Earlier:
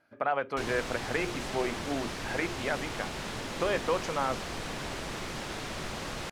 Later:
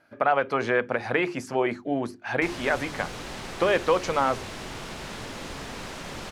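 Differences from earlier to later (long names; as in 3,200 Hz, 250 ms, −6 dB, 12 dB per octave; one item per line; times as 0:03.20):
speech +7.0 dB
background: entry +1.85 s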